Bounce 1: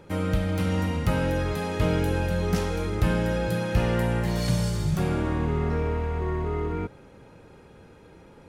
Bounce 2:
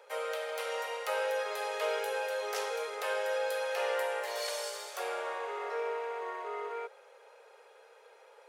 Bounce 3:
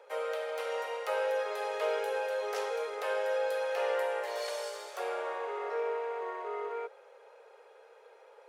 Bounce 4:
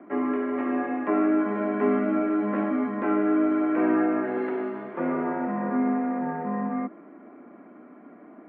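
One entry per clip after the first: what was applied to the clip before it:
steep high-pass 440 Hz 72 dB/oct; gain -2.5 dB
tilt -2 dB/oct
low shelf 470 Hz +6.5 dB; mistuned SSB -210 Hz 350–2300 Hz; gain +6.5 dB

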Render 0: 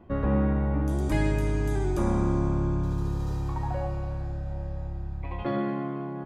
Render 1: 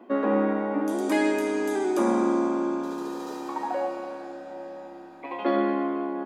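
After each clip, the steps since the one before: elliptic high-pass 230 Hz, stop band 40 dB; gain +6.5 dB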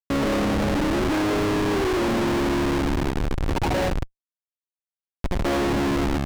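Schmitt trigger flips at -27.5 dBFS; high shelf 7700 Hz -12 dB; gain +5 dB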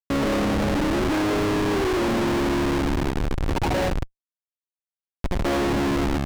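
nothing audible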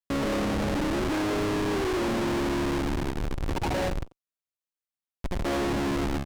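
soft clip -22.5 dBFS, distortion -19 dB; speakerphone echo 90 ms, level -12 dB; gain -2 dB

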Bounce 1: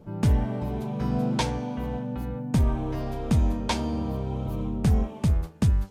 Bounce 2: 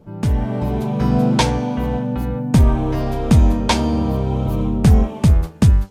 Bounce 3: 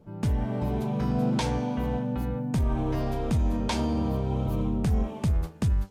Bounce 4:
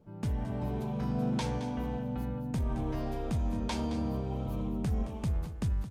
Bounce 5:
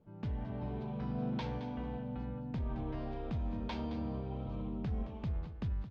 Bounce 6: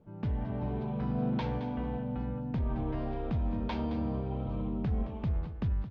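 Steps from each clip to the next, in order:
AGC gain up to 8.5 dB; gain +2 dB
limiter -10.5 dBFS, peak gain reduction 8 dB; gain -7.5 dB
echo 0.219 s -12 dB; gain -6.5 dB
LPF 4200 Hz 24 dB/oct; gain -5.5 dB
high shelf 4800 Hz -11.5 dB; gain +5.5 dB

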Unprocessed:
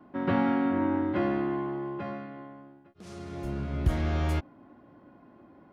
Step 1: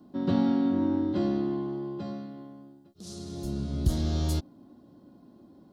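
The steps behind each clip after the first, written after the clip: EQ curve 130 Hz 0 dB, 200 Hz +4 dB, 2300 Hz -14 dB, 4000 Hz +10 dB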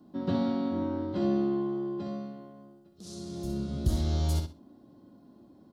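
feedback echo 63 ms, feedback 22%, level -5.5 dB; gain -2.5 dB

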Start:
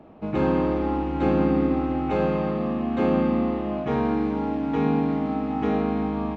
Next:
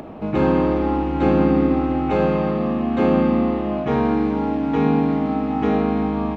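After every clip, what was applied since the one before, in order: upward compressor, threshold -32 dBFS; gain +4.5 dB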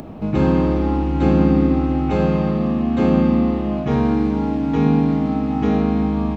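tone controls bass +9 dB, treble +10 dB; gain -2.5 dB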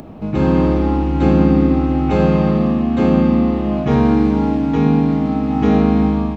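AGC; gain -1 dB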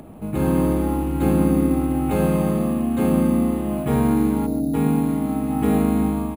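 spectral gain 4.46–4.74, 810–3700 Hz -24 dB; careless resampling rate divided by 4×, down filtered, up hold; echo 0.138 s -14.5 dB; gain -5.5 dB

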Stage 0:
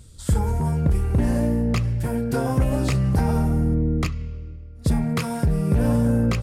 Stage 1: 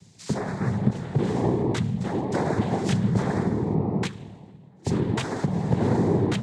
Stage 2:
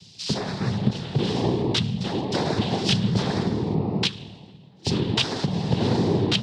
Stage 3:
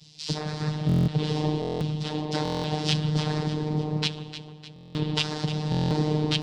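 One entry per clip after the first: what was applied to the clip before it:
noise vocoder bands 6; gain -1.5 dB
band shelf 3800 Hz +14.5 dB 1.3 oct
echo with dull and thin repeats by turns 0.151 s, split 1100 Hz, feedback 69%, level -9 dB; robotiser 152 Hz; stuck buffer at 0.87/1.6/2.43/4.74/5.7, samples 1024, times 8; gain -1.5 dB

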